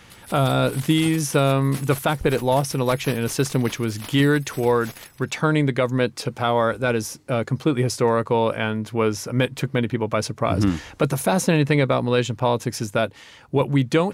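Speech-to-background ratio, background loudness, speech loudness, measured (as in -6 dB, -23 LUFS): 16.5 dB, -38.5 LUFS, -22.0 LUFS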